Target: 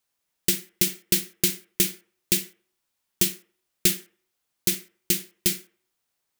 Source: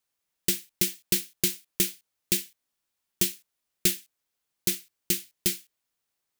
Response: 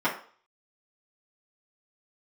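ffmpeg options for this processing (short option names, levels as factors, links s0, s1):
-filter_complex "[0:a]asplit=2[s0][s1];[s1]lowpass=2600[s2];[1:a]atrim=start_sample=2205,adelay=44[s3];[s2][s3]afir=irnorm=-1:irlink=0,volume=0.0708[s4];[s0][s4]amix=inputs=2:normalize=0,volume=1.41"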